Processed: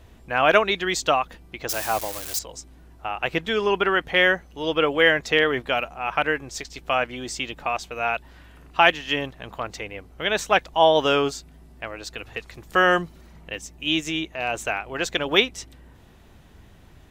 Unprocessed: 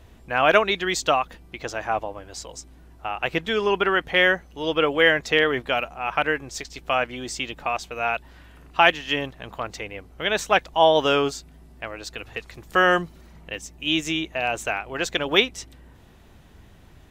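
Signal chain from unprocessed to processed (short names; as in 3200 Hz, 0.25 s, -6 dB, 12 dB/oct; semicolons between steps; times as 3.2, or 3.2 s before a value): 1.69–2.39 switching spikes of -19.5 dBFS; 13.93–14.54 transient shaper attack -8 dB, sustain -2 dB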